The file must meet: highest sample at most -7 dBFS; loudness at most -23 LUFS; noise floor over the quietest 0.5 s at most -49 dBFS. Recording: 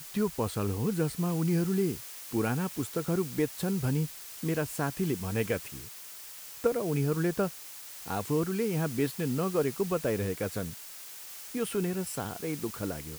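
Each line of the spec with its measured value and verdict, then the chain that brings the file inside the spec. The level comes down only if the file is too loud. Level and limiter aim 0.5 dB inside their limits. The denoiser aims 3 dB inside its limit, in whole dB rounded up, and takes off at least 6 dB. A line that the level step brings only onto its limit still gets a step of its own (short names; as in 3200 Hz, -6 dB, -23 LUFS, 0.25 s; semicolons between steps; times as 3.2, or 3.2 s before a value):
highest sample -12.5 dBFS: OK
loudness -31.5 LUFS: OK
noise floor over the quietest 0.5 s -46 dBFS: fail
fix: denoiser 6 dB, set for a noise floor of -46 dBFS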